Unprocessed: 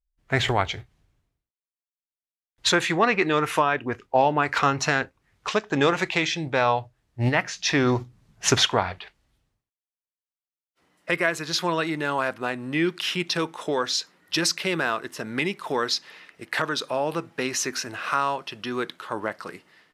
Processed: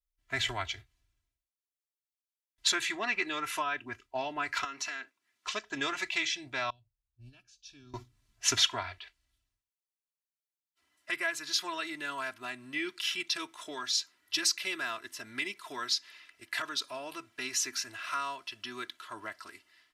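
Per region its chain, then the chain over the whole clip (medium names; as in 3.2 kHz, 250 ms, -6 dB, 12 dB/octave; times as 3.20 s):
4.64–5.47 s: high-pass 190 Hz 24 dB/octave + dynamic bell 2.1 kHz, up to +4 dB, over -35 dBFS, Q 0.86 + compression 2.5:1, threshold -30 dBFS
6.70–7.94 s: Butterworth band-stop 2 kHz, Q 3.4 + amplifier tone stack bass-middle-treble 10-0-1
whole clip: amplifier tone stack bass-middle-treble 5-5-5; comb 3 ms, depth 93%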